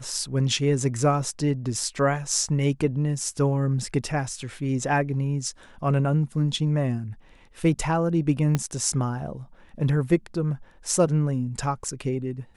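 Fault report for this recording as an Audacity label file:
8.550000	8.550000	click −10 dBFS

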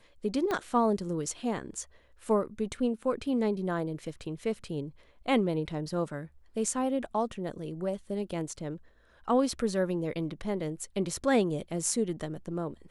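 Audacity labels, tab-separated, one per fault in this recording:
0.510000	0.510000	click −18 dBFS

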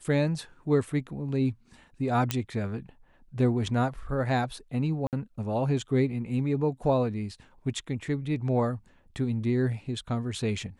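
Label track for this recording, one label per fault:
2.310000	2.310000	click −10 dBFS
5.070000	5.130000	drop-out 58 ms

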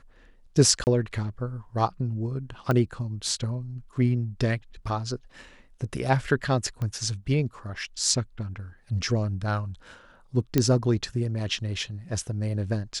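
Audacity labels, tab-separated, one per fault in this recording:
0.840000	0.870000	drop-out 29 ms
2.710000	2.710000	click −13 dBFS
6.820000	6.820000	click −21 dBFS
10.580000	10.580000	click −7 dBFS

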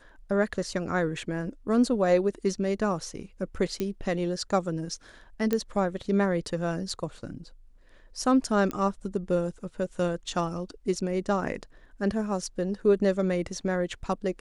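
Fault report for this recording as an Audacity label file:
3.800000	3.800000	click −16 dBFS
5.530000	5.530000	click −13 dBFS
8.710000	8.710000	click −17 dBFS

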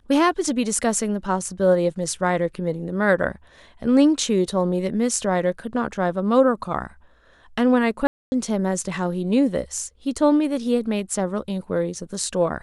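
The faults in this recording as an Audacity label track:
8.070000	8.320000	drop-out 250 ms

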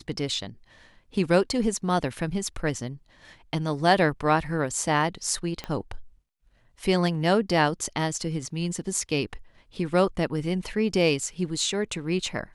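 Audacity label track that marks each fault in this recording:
5.640000	5.640000	click −18 dBFS

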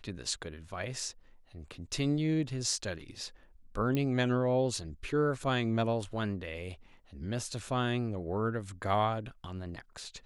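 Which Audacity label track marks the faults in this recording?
3.950000	3.950000	click −19 dBFS

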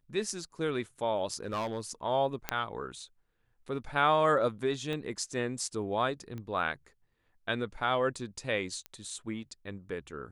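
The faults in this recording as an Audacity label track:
1.350000	1.800000	clipping −29 dBFS
2.490000	2.490000	click −13 dBFS
4.930000	4.930000	click −24 dBFS
6.380000	6.380000	click −29 dBFS
8.860000	8.860000	click −24 dBFS

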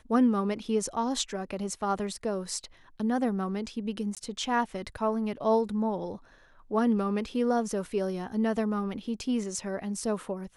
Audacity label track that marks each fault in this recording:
4.150000	4.170000	drop-out 17 ms

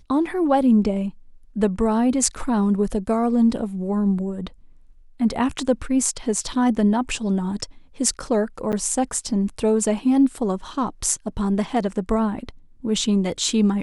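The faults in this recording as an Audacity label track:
8.720000	8.730000	drop-out 8.9 ms

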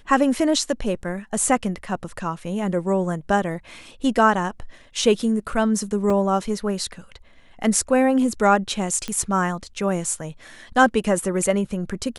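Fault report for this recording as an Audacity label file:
6.100000	6.100000	drop-out 2.4 ms
9.080000	9.080000	click −14 dBFS

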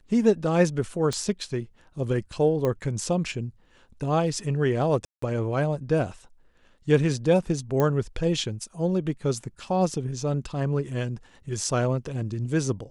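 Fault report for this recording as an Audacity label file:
1.130000	1.130000	click −16 dBFS
2.650000	2.650000	click −15 dBFS
5.050000	5.220000	drop-out 174 ms
7.800000	7.800000	click −12 dBFS

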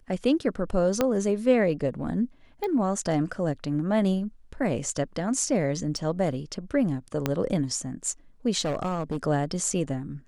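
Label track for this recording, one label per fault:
1.010000	1.010000	click −9 dBFS
2.640000	2.640000	click −19 dBFS
5.970000	5.970000	drop-out 2.2 ms
7.260000	7.260000	click −10 dBFS
8.600000	9.170000	clipping −23.5 dBFS

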